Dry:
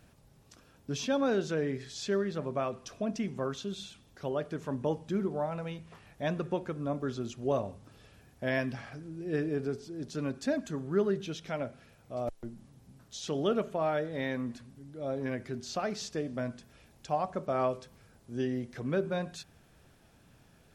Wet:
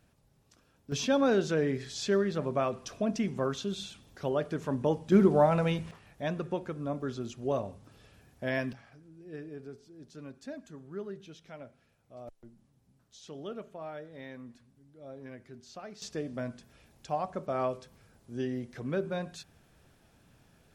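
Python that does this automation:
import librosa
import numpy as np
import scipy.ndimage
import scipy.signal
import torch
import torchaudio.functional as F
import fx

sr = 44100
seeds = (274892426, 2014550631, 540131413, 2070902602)

y = fx.gain(x, sr, db=fx.steps((0.0, -6.5), (0.92, 3.0), (5.12, 10.0), (5.91, -1.0), (8.73, -11.5), (16.02, -1.5)))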